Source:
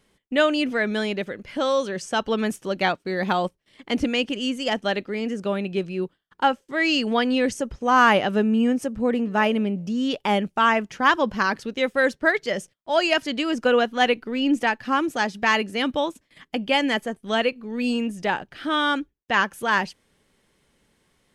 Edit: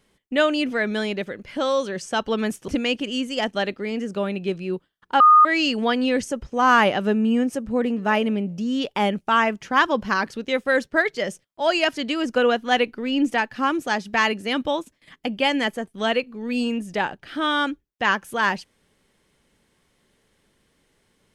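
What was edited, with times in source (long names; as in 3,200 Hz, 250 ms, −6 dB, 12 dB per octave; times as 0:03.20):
0:02.68–0:03.97: remove
0:06.49–0:06.74: beep over 1,230 Hz −8.5 dBFS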